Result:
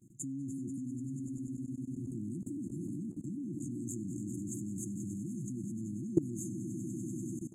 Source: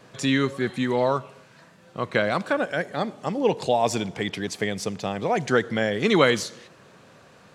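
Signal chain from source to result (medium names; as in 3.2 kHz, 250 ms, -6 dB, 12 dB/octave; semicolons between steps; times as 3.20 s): FFT band-reject 360–6300 Hz; echo with a slow build-up 97 ms, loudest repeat 5, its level -13.5 dB; level held to a coarse grid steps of 19 dB; trim -1 dB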